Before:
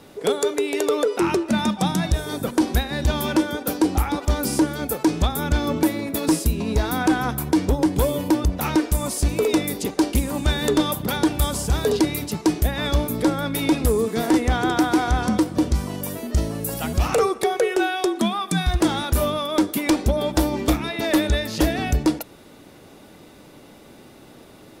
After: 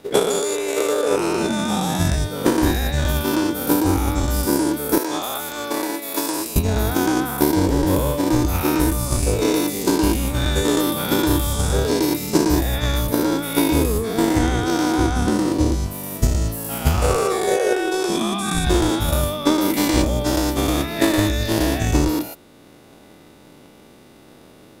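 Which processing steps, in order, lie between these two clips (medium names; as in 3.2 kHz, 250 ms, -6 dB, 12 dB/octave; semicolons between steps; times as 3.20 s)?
every event in the spectrogram widened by 240 ms; 4.98–6.56 s: high-pass 430 Hz 12 dB/octave; transient shaper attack +12 dB, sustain -1 dB; trim -7 dB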